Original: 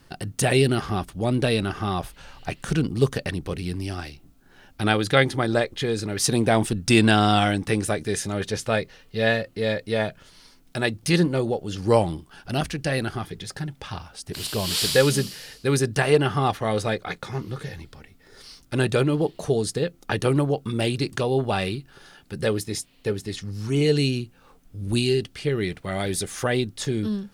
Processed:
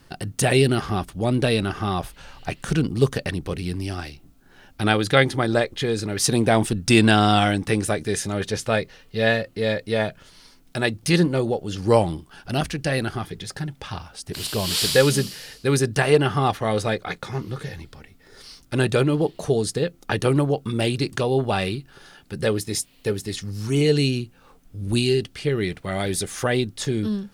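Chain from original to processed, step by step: 22.67–23.82 s: treble shelf 6.6 kHz +7 dB; trim +1.5 dB

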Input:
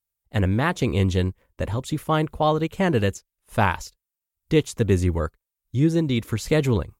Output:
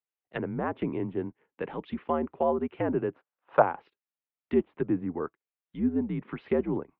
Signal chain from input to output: low-pass that closes with the level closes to 1 kHz, closed at -17.5 dBFS; 3.14–3.62 s: high-order bell 990 Hz +10.5 dB; mistuned SSB -76 Hz 260–3100 Hz; trim -4 dB

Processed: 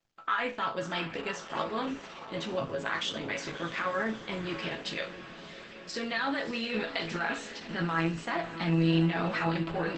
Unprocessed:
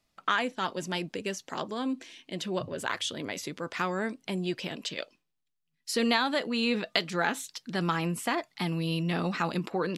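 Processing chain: 3.31–4.13 s: hum notches 60/120/180/240/300/360/420 Hz; dynamic bell 1.7 kHz, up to +6 dB, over -44 dBFS, Q 0.87; in parallel at +2.5 dB: compressor with a negative ratio -29 dBFS, ratio -0.5; on the sum: bit crusher 10-bit; distance through air 83 m; chord resonator A2 major, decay 0.31 s; echo that smears into a reverb 642 ms, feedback 61%, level -12 dB; trim +5.5 dB; Opus 12 kbps 48 kHz

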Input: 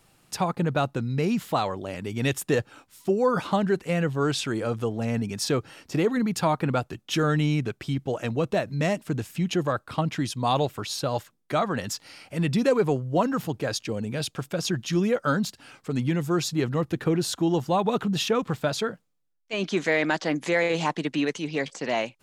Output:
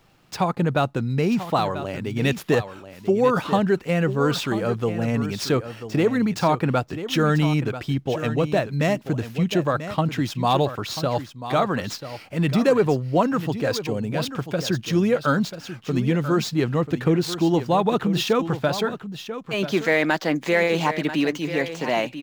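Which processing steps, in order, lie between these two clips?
median filter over 5 samples; delay 989 ms -11.5 dB; trim +3.5 dB

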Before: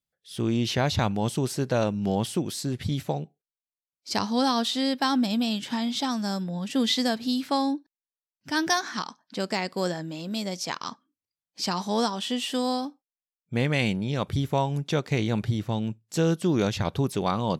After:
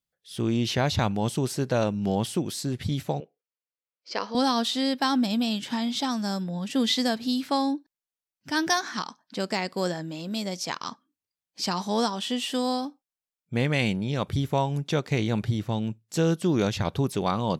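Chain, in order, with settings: 3.20–4.35 s: cabinet simulation 440–4800 Hz, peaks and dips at 500 Hz +9 dB, 820 Hz -7 dB, 3.8 kHz -9 dB

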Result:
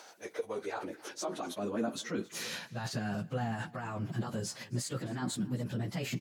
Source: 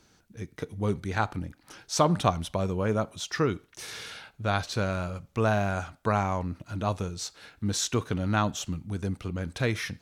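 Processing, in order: pitch bend over the whole clip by +4 st starting unshifted; dynamic bell 150 Hz, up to -7 dB, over -49 dBFS, Q 6.2; reverse; compression 16:1, threshold -35 dBFS, peak gain reduction 18.5 dB; reverse; peak limiter -33 dBFS, peak gain reduction 9 dB; plain phase-vocoder stretch 0.62×; gain riding 2 s; high-pass sweep 660 Hz -> 150 Hz, 0.08–2.83 s; on a send: delay 269 ms -22 dB; on the sum: trim +8 dB

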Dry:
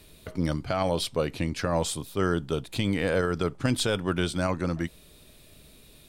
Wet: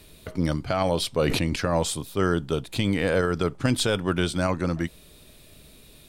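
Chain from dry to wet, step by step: 1.16–1.56 s: decay stretcher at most 28 dB/s; trim +2.5 dB

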